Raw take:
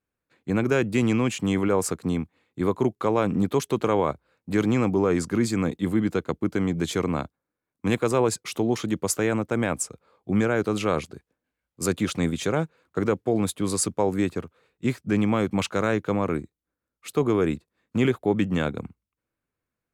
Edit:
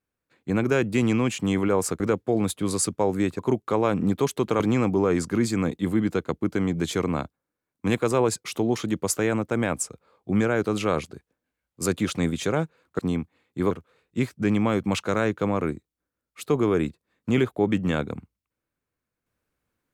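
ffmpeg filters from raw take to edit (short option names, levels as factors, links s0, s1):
-filter_complex "[0:a]asplit=6[s0][s1][s2][s3][s4][s5];[s0]atrim=end=2.002[s6];[s1]atrim=start=12.988:end=14.382[s7];[s2]atrim=start=2.718:end=3.932[s8];[s3]atrim=start=4.598:end=12.992[s9];[s4]atrim=start=1.998:end=2.722[s10];[s5]atrim=start=14.378[s11];[s6][s7]acrossfade=d=0.004:c1=hsin:c2=hsin[s12];[s12][s8]acrossfade=d=0.004:c1=hsin:c2=hsin[s13];[s13][s9]acrossfade=d=0.004:c1=hsin:c2=hsin[s14];[s14][s10]acrossfade=d=0.004:c1=hsin:c2=hsin[s15];[s15][s11]acrossfade=d=0.004:c1=hsin:c2=hsin"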